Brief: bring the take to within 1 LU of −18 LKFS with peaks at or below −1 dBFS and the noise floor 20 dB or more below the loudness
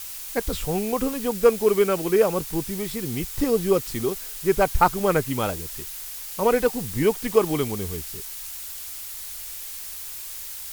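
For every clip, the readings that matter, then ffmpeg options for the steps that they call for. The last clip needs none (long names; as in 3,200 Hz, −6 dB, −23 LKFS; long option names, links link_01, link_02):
background noise floor −36 dBFS; target noise floor −45 dBFS; integrated loudness −24.5 LKFS; sample peak −3.5 dBFS; target loudness −18.0 LKFS
→ -af "afftdn=noise_reduction=9:noise_floor=-36"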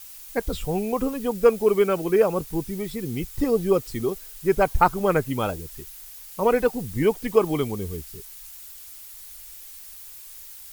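background noise floor −43 dBFS; target noise floor −44 dBFS
→ -af "afftdn=noise_reduction=6:noise_floor=-43"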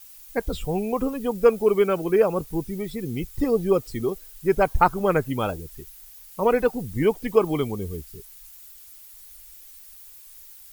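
background noise floor −47 dBFS; integrated loudness −24.0 LKFS; sample peak −4.0 dBFS; target loudness −18.0 LKFS
→ -af "volume=6dB,alimiter=limit=-1dB:level=0:latency=1"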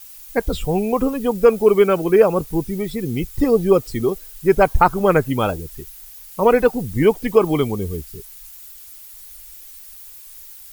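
integrated loudness −18.0 LKFS; sample peak −1.0 dBFS; background noise floor −41 dBFS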